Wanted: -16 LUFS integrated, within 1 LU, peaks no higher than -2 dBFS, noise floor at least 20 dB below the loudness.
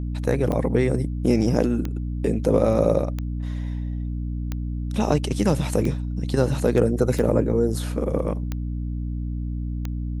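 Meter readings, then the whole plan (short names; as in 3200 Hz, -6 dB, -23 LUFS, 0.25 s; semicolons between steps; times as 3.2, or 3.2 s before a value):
clicks 8; hum 60 Hz; harmonics up to 300 Hz; hum level -25 dBFS; loudness -24.0 LUFS; peak -5.0 dBFS; loudness target -16.0 LUFS
-> de-click; notches 60/120/180/240/300 Hz; gain +8 dB; limiter -2 dBFS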